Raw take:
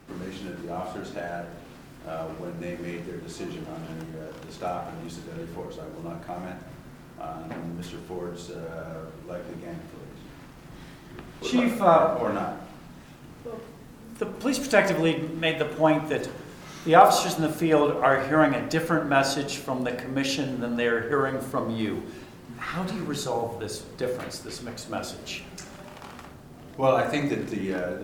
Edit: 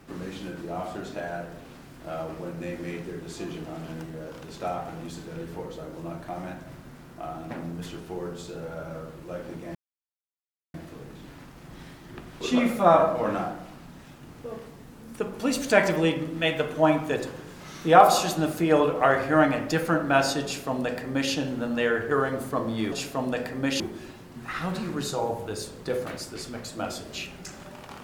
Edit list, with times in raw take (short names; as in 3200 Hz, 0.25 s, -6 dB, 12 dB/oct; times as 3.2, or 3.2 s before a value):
9.75 insert silence 0.99 s
19.45–20.33 copy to 21.93